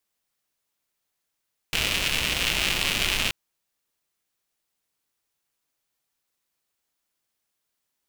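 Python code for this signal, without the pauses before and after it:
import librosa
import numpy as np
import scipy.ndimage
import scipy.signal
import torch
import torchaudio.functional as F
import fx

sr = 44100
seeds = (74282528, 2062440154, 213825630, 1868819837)

y = fx.rain(sr, seeds[0], length_s=1.58, drops_per_s=220.0, hz=2700.0, bed_db=-5.0)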